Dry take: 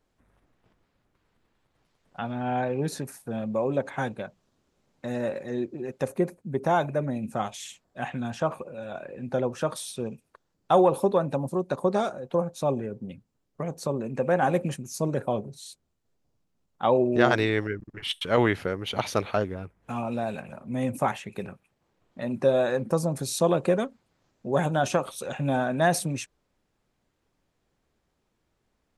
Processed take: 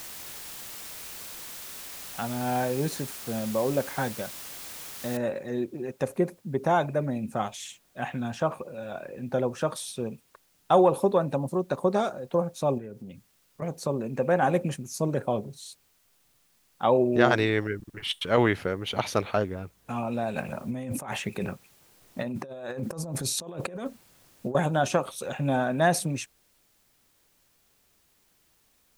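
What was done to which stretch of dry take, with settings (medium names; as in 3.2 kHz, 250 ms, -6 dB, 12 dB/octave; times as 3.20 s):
5.17 s: noise floor step -41 dB -67 dB
12.78–13.62 s: compression 2:1, threshold -41 dBFS
20.36–24.55 s: compressor with a negative ratio -34 dBFS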